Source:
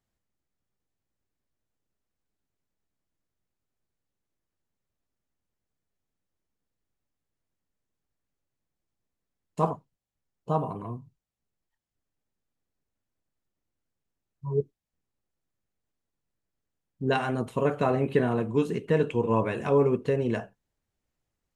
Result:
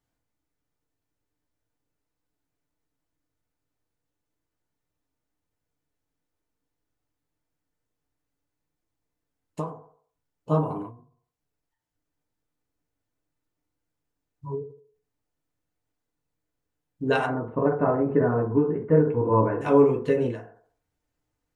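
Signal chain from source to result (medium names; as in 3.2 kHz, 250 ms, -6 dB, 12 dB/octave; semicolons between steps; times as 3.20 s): 17.26–19.61 s: low-pass 1.5 kHz 24 dB/octave; FDN reverb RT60 0.43 s, low-frequency decay 0.75×, high-frequency decay 0.35×, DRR -0.5 dB; endings held to a fixed fall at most 110 dB/s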